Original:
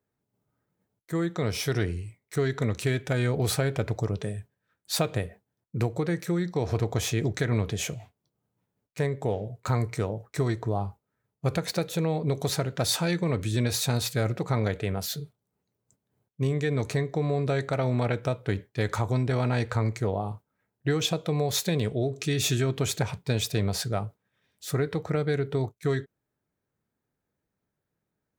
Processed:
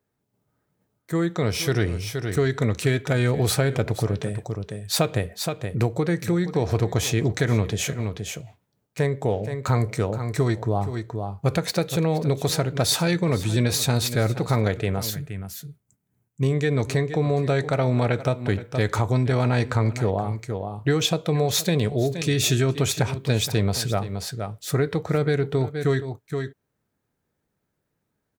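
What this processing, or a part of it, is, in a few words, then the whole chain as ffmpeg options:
ducked delay: -filter_complex "[0:a]asplit=3[link_01][link_02][link_03];[link_02]adelay=472,volume=-6dB[link_04];[link_03]apad=whole_len=1272600[link_05];[link_04][link_05]sidechaincompress=threshold=-34dB:ratio=8:attack=5.9:release=162[link_06];[link_01][link_06]amix=inputs=2:normalize=0,asettb=1/sr,asplit=3[link_07][link_08][link_09];[link_07]atrim=end=15.104[link_10];[link_08]atrim=start=15.1:end=16.43,asetpts=PTS-STARTPTS,afade=type=in:duration=0.004:curve=qsin,afade=type=out:start_time=1.326:duration=0.004:curve=qsin,equalizer=frequency=500:width_type=o:width=1:gain=-11,equalizer=frequency=1000:width_type=o:width=1:gain=-5,equalizer=frequency=4000:width_type=o:width=1:gain=-10[link_11];[link_09]atrim=start=16.426[link_12];[link_10][link_11]acrossfade=duration=0.004:curve1=hsin:curve2=qsin[link_13];[link_13][link_12]acrossfade=duration=0.004:curve1=qsin:curve2=hsin,volume=4.5dB"

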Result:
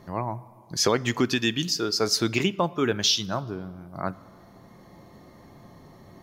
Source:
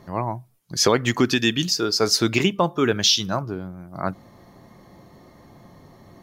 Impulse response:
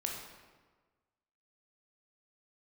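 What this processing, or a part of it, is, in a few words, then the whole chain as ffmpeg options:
ducked reverb: -filter_complex "[0:a]asplit=3[link_01][link_02][link_03];[1:a]atrim=start_sample=2205[link_04];[link_02][link_04]afir=irnorm=-1:irlink=0[link_05];[link_03]apad=whole_len=274667[link_06];[link_05][link_06]sidechaincompress=threshold=-27dB:ratio=8:attack=7.6:release=1040,volume=-5dB[link_07];[link_01][link_07]amix=inputs=2:normalize=0,volume=-5dB"

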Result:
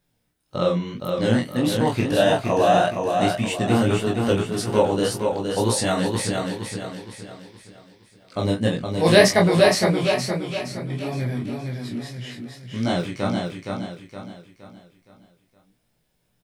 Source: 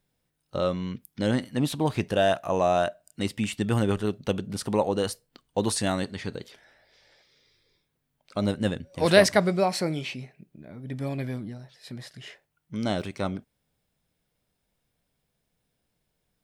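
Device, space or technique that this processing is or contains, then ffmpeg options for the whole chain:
double-tracked vocal: -filter_complex "[0:a]asplit=2[link_01][link_02];[link_02]adelay=17,volume=-3dB[link_03];[link_01][link_03]amix=inputs=2:normalize=0,flanger=delay=22.5:depth=7.9:speed=1.7,asettb=1/sr,asplit=3[link_04][link_05][link_06];[link_04]atrim=end=8.384[link_07];[link_05]atrim=start=8.38:end=9.46,asetpts=PTS-STARTPTS,afade=type=in:duration=0.004:curve=qsin,afade=type=out:start_time=1.076:duration=0.004:curve=qsin,bandreject=frequency=1400:width=6.8[link_08];[link_06]atrim=start=9.456[link_09];[link_07][link_08]acrossfade=duration=0.004:curve1=hsin:curve2=qsin[link_10];[link_10][link_09]acrossfade=duration=0.004:curve1=qsin:curve2=hsin,aecho=1:1:467|934|1401|1868|2335:0.596|0.244|0.1|0.0411|0.0168,volume=6dB"

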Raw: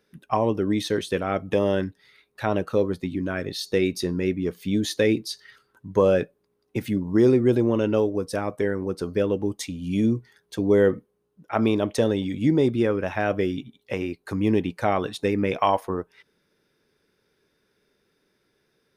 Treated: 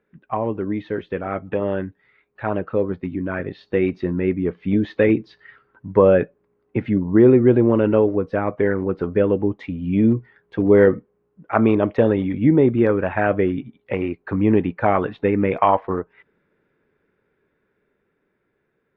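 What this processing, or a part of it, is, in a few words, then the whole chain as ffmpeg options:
action camera in a waterproof case: -filter_complex "[0:a]asettb=1/sr,asplit=3[link_01][link_02][link_03];[link_01]atrim=end=3.614[link_04];[link_02]atrim=start=3.61:end=4.2,asetpts=PTS-STARTPTS,afade=type=in:duration=0.004:curve=qsin,afade=type=out:start_time=0.586:duration=0.004:curve=qsin,bandreject=frequency=440:width=12[link_05];[link_03]atrim=start=4.196[link_06];[link_04][link_05]acrossfade=duration=0.004:curve1=hsin:curve2=qsin[link_07];[link_07][link_06]acrossfade=duration=0.004:curve1=qsin:curve2=hsin,lowpass=frequency=2300:width=0.5412,lowpass=frequency=2300:width=1.3066,dynaudnorm=framelen=790:gausssize=9:maxgain=11dB,volume=-1dB" -ar 48000 -c:a aac -b:a 48k

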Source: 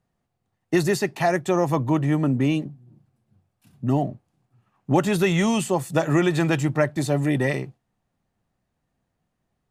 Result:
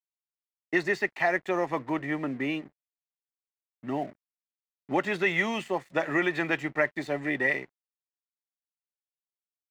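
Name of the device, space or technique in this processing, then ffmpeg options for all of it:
pocket radio on a weak battery: -af "highpass=290,lowpass=4100,aeval=exprs='sgn(val(0))*max(abs(val(0))-0.00422,0)':channel_layout=same,equalizer=frequency=2000:width_type=o:width=0.56:gain=11,volume=-5.5dB"

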